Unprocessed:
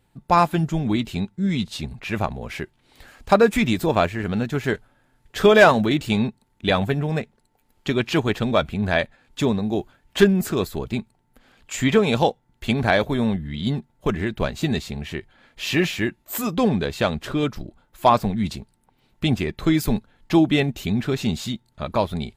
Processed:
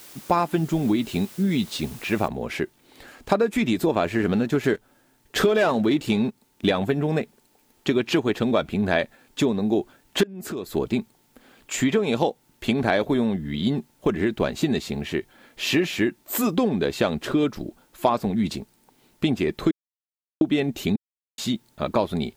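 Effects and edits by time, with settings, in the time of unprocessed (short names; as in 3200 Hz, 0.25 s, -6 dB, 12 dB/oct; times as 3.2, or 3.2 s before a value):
2.28 noise floor step -47 dB -67 dB
4.06–6.72 sample leveller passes 1
10.23–10.74 compressor 10:1, threshold -31 dBFS
19.71–20.41 mute
20.96–21.38 mute
whole clip: bell 320 Hz +7 dB 1.5 oct; compressor 12:1, threshold -17 dBFS; low shelf 120 Hz -10 dB; gain +1.5 dB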